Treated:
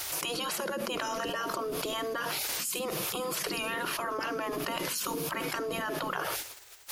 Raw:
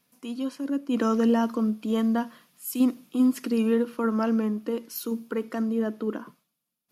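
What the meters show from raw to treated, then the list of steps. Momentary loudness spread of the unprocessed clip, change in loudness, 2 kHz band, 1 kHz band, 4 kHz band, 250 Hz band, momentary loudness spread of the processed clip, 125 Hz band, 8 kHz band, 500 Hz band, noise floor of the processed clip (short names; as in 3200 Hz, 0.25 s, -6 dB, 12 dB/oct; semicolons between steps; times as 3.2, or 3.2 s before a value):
10 LU, -6.0 dB, +7.0 dB, +1.5 dB, +10.0 dB, -16.5 dB, 2 LU, n/a, +9.5 dB, -5.5 dB, -47 dBFS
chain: spectral gate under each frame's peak -15 dB weak; fast leveller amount 100%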